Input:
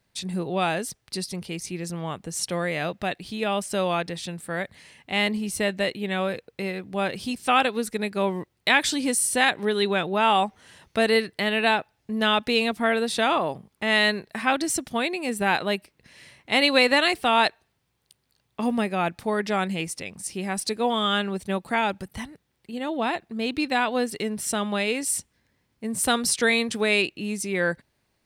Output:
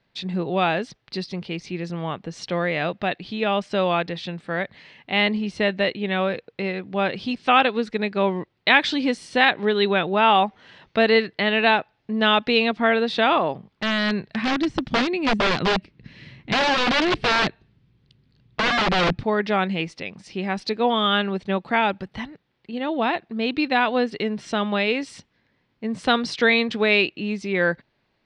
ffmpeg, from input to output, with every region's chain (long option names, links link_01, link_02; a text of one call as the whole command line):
ffmpeg -i in.wav -filter_complex "[0:a]asettb=1/sr,asplit=3[link_01][link_02][link_03];[link_01]atrim=end=13.534[link_04];[link_02]atrim=start=13.53:end=19.23,asetpts=PTS-STARTPTS,afade=type=in:duration=0.004:curve=qsin,afade=type=out:start_time=5.696:duration=0.004:curve=qsin,deesser=0.85,asubboost=boost=10:cutoff=240,aeval=exprs='(mod(7.94*val(0)+1,2)-1)/7.94':channel_layout=same[link_05];[link_03]atrim=start=19.226[link_06];[link_04][link_05]acrossfade=duration=0.004:curve1=hsin:curve2=qsin[link_07];[link_07][link_06]acrossfade=duration=0.004:curve1=qsin:curve2=hsin,lowpass=frequency=4300:width=0.5412,lowpass=frequency=4300:width=1.3066,equalizer=frequency=70:width_type=o:width=0.58:gain=-15,volume=3.5dB" out.wav